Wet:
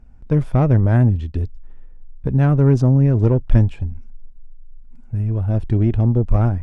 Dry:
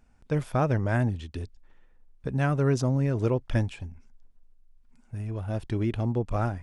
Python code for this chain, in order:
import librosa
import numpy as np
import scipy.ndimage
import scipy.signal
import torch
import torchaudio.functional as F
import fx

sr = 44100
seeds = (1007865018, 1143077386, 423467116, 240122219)

y = fx.diode_clip(x, sr, knee_db=-19.5)
y = fx.tilt_eq(y, sr, slope=-3.0)
y = y * 10.0 ** (4.0 / 20.0)